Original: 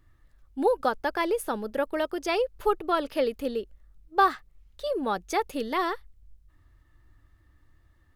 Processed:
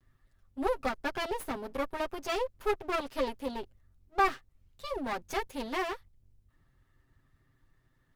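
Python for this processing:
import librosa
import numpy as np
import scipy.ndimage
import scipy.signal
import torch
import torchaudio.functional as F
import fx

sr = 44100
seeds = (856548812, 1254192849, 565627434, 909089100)

y = fx.lower_of_two(x, sr, delay_ms=7.6)
y = y * 10.0 ** (-4.5 / 20.0)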